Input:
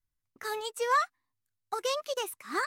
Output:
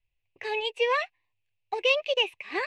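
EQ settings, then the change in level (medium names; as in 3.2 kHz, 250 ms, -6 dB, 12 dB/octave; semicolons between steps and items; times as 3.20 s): resonant low-pass 2.6 kHz, resonance Q 7; static phaser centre 560 Hz, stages 4; +6.0 dB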